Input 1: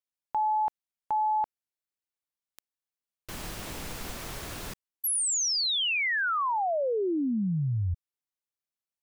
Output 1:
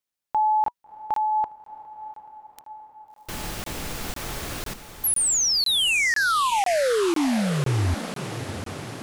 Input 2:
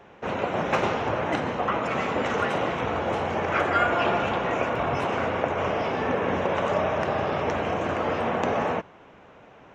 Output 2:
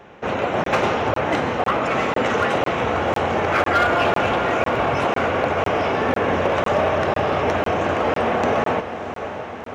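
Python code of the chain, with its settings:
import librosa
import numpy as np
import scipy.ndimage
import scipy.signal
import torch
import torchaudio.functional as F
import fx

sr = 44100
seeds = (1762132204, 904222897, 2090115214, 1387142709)

p1 = fx.notch(x, sr, hz=970.0, q=29.0)
p2 = fx.dynamic_eq(p1, sr, hz=170.0, q=2.4, threshold_db=-41.0, ratio=4.0, max_db=-3)
p3 = 10.0 ** (-20.0 / 20.0) * (np.abs((p2 / 10.0 ** (-20.0 / 20.0) + 3.0) % 4.0 - 2.0) - 1.0)
p4 = p2 + (p3 * 10.0 ** (-6.5 / 20.0))
p5 = fx.echo_diffused(p4, sr, ms=673, feedback_pct=66, wet_db=-11.5)
p6 = fx.buffer_crackle(p5, sr, first_s=0.64, period_s=0.5, block=1024, kind='zero')
y = p6 * 10.0 ** (2.5 / 20.0)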